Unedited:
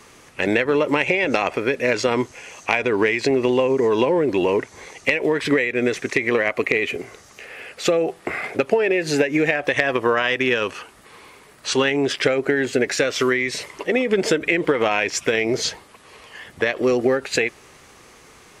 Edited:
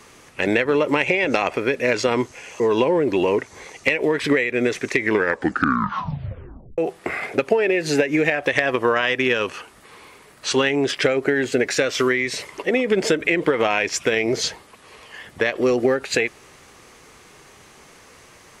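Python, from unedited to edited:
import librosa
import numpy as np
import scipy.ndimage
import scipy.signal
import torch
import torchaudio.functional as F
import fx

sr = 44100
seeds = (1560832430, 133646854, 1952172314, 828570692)

y = fx.edit(x, sr, fx.cut(start_s=2.6, length_s=1.21),
    fx.tape_stop(start_s=6.16, length_s=1.83), tone=tone)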